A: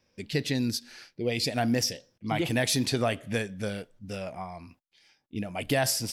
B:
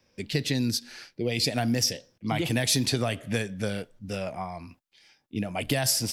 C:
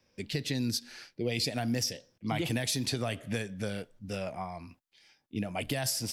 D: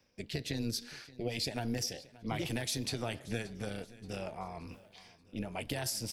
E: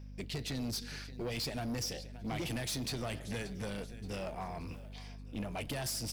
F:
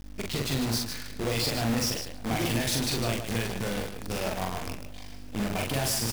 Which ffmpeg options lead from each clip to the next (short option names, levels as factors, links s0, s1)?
-filter_complex "[0:a]acrossover=split=160|3000[s0][s1][s2];[s1]acompressor=threshold=0.0355:ratio=6[s3];[s0][s3][s2]amix=inputs=3:normalize=0,volume=1.5"
-af "alimiter=limit=0.15:level=0:latency=1:release=278,volume=0.668"
-af "areverse,acompressor=mode=upward:threshold=0.0178:ratio=2.5,areverse,tremolo=f=230:d=0.667,aecho=1:1:578|1156|1734|2312:0.1|0.048|0.023|0.0111,volume=0.841"
-filter_complex "[0:a]asplit=2[s0][s1];[s1]acrusher=bits=4:mode=log:mix=0:aa=0.000001,volume=0.398[s2];[s0][s2]amix=inputs=2:normalize=0,aeval=exprs='val(0)+0.00501*(sin(2*PI*50*n/s)+sin(2*PI*2*50*n/s)/2+sin(2*PI*3*50*n/s)/3+sin(2*PI*4*50*n/s)/4+sin(2*PI*5*50*n/s)/5)':c=same,asoftclip=type=tanh:threshold=0.0251"
-filter_complex "[0:a]acrusher=bits=7:dc=4:mix=0:aa=0.000001,asplit=2[s0][s1];[s1]aecho=0:1:43.73|151.6:0.794|0.447[s2];[s0][s2]amix=inputs=2:normalize=0,volume=1.88"